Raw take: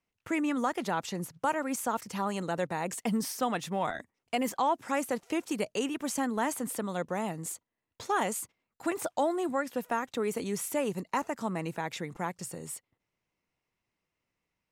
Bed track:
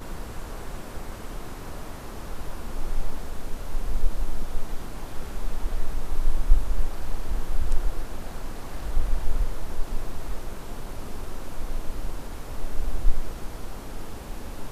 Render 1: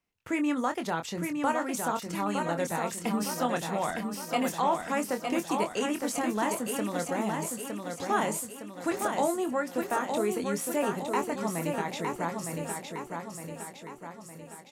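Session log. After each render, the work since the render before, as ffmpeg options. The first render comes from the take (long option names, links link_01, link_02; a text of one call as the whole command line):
ffmpeg -i in.wav -filter_complex "[0:a]asplit=2[link_01][link_02];[link_02]adelay=24,volume=-8dB[link_03];[link_01][link_03]amix=inputs=2:normalize=0,aecho=1:1:911|1822|2733|3644|4555|5466|6377:0.562|0.292|0.152|0.0791|0.0411|0.0214|0.0111" out.wav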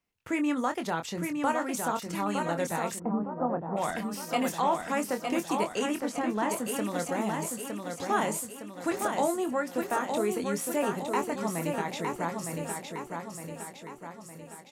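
ffmpeg -i in.wav -filter_complex "[0:a]asplit=3[link_01][link_02][link_03];[link_01]afade=type=out:start_time=2.98:duration=0.02[link_04];[link_02]lowpass=frequency=1100:width=0.5412,lowpass=frequency=1100:width=1.3066,afade=type=in:start_time=2.98:duration=0.02,afade=type=out:start_time=3.76:duration=0.02[link_05];[link_03]afade=type=in:start_time=3.76:duration=0.02[link_06];[link_04][link_05][link_06]amix=inputs=3:normalize=0,asettb=1/sr,asplit=3[link_07][link_08][link_09];[link_07]atrim=end=6.004[link_10];[link_08]atrim=start=6:end=6.5,asetpts=PTS-STARTPTS,afade=type=in:duration=0.004:curve=qsin,afade=type=out:start_time=0.496:duration=0.004:curve=qsin,lowpass=frequency=2900:poles=1[link_11];[link_09]atrim=start=6.496[link_12];[link_10][link_11]acrossfade=duration=0.004:curve1=hsin:curve2=qsin[link_13];[link_13][link_12]acrossfade=duration=0.004:curve1=qsin:curve2=hsin" out.wav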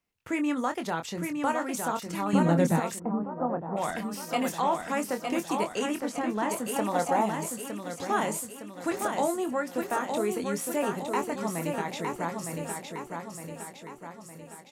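ffmpeg -i in.wav -filter_complex "[0:a]asettb=1/sr,asplit=3[link_01][link_02][link_03];[link_01]atrim=end=2.334[link_04];[link_02]atrim=start=2.33:end=2.8,asetpts=PTS-STARTPTS,afade=type=in:duration=0.004:curve=qsin,afade=type=out:start_time=0.466:duration=0.004:curve=qsin,equalizer=frequency=180:width=0.57:gain=13.5[link_05];[link_03]atrim=start=2.796[link_06];[link_04][link_05]acrossfade=duration=0.004:curve1=hsin:curve2=qsin[link_07];[link_07][link_06]acrossfade=duration=0.004:curve1=qsin:curve2=hsin,asettb=1/sr,asplit=3[link_08][link_09][link_10];[link_08]atrim=end=6.764[link_11];[link_09]atrim=start=6.76:end=7.26,asetpts=PTS-STARTPTS,afade=type=in:duration=0.004:curve=qsin,afade=type=out:start_time=0.496:duration=0.004:curve=qsin,equalizer=frequency=830:width_type=o:width=0.89:gain=11.5[link_12];[link_10]atrim=start=7.256[link_13];[link_11][link_12]acrossfade=duration=0.004:curve1=hsin:curve2=qsin[link_14];[link_14][link_13]acrossfade=duration=0.004:curve1=qsin:curve2=hsin" out.wav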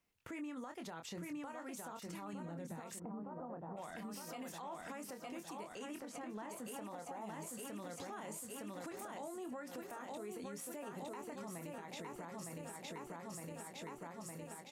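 ffmpeg -i in.wav -af "acompressor=threshold=-37dB:ratio=4,alimiter=level_in=14dB:limit=-24dB:level=0:latency=1:release=144,volume=-14dB" out.wav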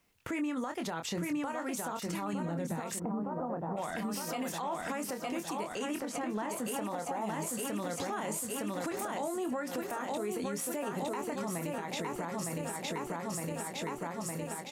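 ffmpeg -i in.wav -af "volume=11dB" out.wav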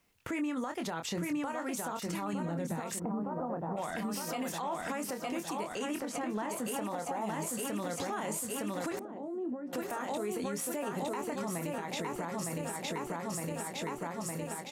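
ffmpeg -i in.wav -filter_complex "[0:a]asettb=1/sr,asplit=3[link_01][link_02][link_03];[link_01]atrim=end=8.994[link_04];[link_02]atrim=start=8.99:end=9.73,asetpts=PTS-STARTPTS,afade=type=in:duration=0.004:curve=qsin,afade=type=out:start_time=0.736:duration=0.004:curve=qsin,bandpass=frequency=300:width_type=q:width=1.5[link_05];[link_03]atrim=start=9.726[link_06];[link_04][link_05]acrossfade=duration=0.004:curve1=hsin:curve2=qsin[link_07];[link_07][link_06]acrossfade=duration=0.004:curve1=qsin:curve2=hsin" out.wav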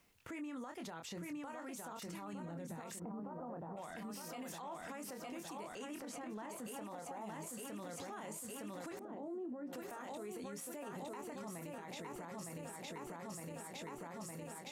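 ffmpeg -i in.wav -af "areverse,acompressor=mode=upward:threshold=-46dB:ratio=2.5,areverse,alimiter=level_in=14.5dB:limit=-24dB:level=0:latency=1:release=158,volume=-14.5dB" out.wav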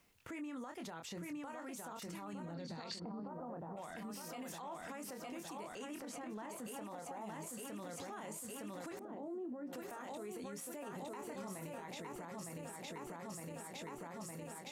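ffmpeg -i in.wav -filter_complex "[0:a]asettb=1/sr,asplit=3[link_01][link_02][link_03];[link_01]atrim=end=2.544[link_04];[link_02]atrim=start=2.54:end=3.28,asetpts=PTS-STARTPTS,afade=type=in:duration=0.004:curve=qsin,afade=type=out:start_time=0.736:duration=0.004:curve=qsin,lowpass=frequency=4500:width_type=q:width=15[link_05];[link_03]atrim=start=3.276[link_06];[link_04][link_05]acrossfade=duration=0.004:curve1=hsin:curve2=qsin[link_07];[link_07][link_06]acrossfade=duration=0.004:curve1=qsin:curve2=hsin,asettb=1/sr,asplit=3[link_08][link_09][link_10];[link_08]atrim=end=11.194[link_11];[link_09]atrim=start=11.19:end=11.88,asetpts=PTS-STARTPTS,afade=type=in:duration=0.004:curve=qsin,afade=type=out:start_time=0.686:duration=0.004:curve=qsin,asplit=2[link_12][link_13];[link_13]adelay=26,volume=-6dB[link_14];[link_12][link_14]amix=inputs=2:normalize=0,atrim=end_sample=30429[link_15];[link_10]atrim=start=11.876[link_16];[link_11][link_15]acrossfade=duration=0.004:curve1=hsin:curve2=qsin[link_17];[link_17][link_16]acrossfade=duration=0.004:curve1=qsin:curve2=hsin" out.wav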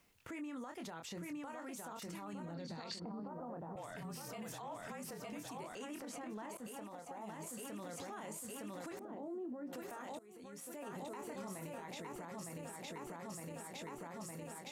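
ffmpeg -i in.wav -filter_complex "[0:a]asettb=1/sr,asplit=3[link_01][link_02][link_03];[link_01]atrim=end=3.754[link_04];[link_02]atrim=start=3.75:end=5.64,asetpts=PTS-STARTPTS,afade=type=in:duration=0.004:curve=qsin,afade=type=out:start_time=1.886:duration=0.004:curve=qsin,afreqshift=-40[link_05];[link_03]atrim=start=5.636[link_06];[link_04][link_05]acrossfade=duration=0.004:curve1=hsin:curve2=qsin[link_07];[link_07][link_06]acrossfade=duration=0.004:curve1=qsin:curve2=hsin,asettb=1/sr,asplit=3[link_08][link_09][link_10];[link_08]atrim=end=6.574[link_11];[link_09]atrim=start=6.57:end=7.41,asetpts=PTS-STARTPTS,afade=type=in:duration=0.004:curve=qsin,afade=type=out:start_time=0.836:duration=0.004:curve=qsin,agate=range=-33dB:threshold=-45dB:ratio=3:release=100:detection=peak[link_12];[link_10]atrim=start=7.406[link_13];[link_11][link_12]acrossfade=duration=0.004:curve1=hsin:curve2=qsin[link_14];[link_14][link_13]acrossfade=duration=0.004:curve1=qsin:curve2=hsin,asplit=2[link_15][link_16];[link_15]atrim=end=10.19,asetpts=PTS-STARTPTS,afade=type=out:start_time=10.186:duration=0.004:curve=hsin:silence=0.105925[link_17];[link_16]atrim=start=10.19,asetpts=PTS-STARTPTS,afade=type=in:duration=0.67:silence=0.105925[link_18];[link_17][link_18]concat=n=2:v=0:a=1" out.wav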